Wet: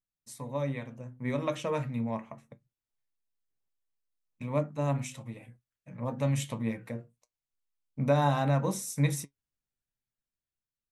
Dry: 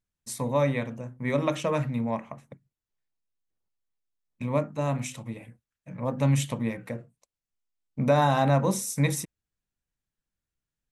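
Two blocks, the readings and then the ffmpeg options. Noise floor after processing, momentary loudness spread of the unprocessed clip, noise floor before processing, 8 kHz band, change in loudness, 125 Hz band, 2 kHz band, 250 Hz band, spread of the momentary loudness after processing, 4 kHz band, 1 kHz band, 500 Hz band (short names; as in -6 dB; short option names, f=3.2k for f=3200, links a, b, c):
under -85 dBFS, 17 LU, under -85 dBFS, -5.5 dB, -4.5 dB, -3.5 dB, -5.5 dB, -4.5 dB, 19 LU, -5.0 dB, -5.5 dB, -5.0 dB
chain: -af "dynaudnorm=f=190:g=11:m=6dB,flanger=delay=6.4:depth=2.8:regen=64:speed=0.23:shape=triangular,volume=-6.5dB"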